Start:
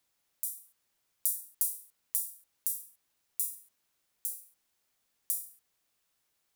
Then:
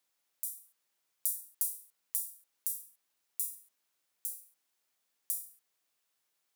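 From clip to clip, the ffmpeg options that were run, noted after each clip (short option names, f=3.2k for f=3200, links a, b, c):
-af "highpass=f=300:p=1,volume=-2.5dB"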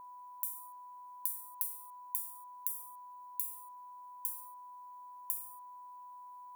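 -af "aeval=exprs='val(0)+0.00224*sin(2*PI*990*n/s)':c=same,acompressor=threshold=-40dB:ratio=4,equalizer=f=3.9k:w=0.41:g=-14,volume=9.5dB"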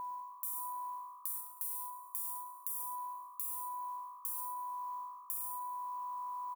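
-filter_complex "[0:a]areverse,acompressor=threshold=-47dB:ratio=6,areverse,asplit=7[a][b][c][d][e][f][g];[b]adelay=105,afreqshift=53,volume=-14.5dB[h];[c]adelay=210,afreqshift=106,volume=-19.5dB[i];[d]adelay=315,afreqshift=159,volume=-24.6dB[j];[e]adelay=420,afreqshift=212,volume=-29.6dB[k];[f]adelay=525,afreqshift=265,volume=-34.6dB[l];[g]adelay=630,afreqshift=318,volume=-39.7dB[m];[a][h][i][j][k][l][m]amix=inputs=7:normalize=0,volume=10dB"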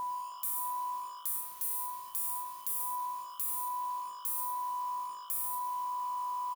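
-filter_complex "[0:a]asoftclip=type=tanh:threshold=-26.5dB,acrusher=bits=8:mix=0:aa=0.5,asplit=2[a][b];[b]adelay=25,volume=-10.5dB[c];[a][c]amix=inputs=2:normalize=0,volume=5.5dB"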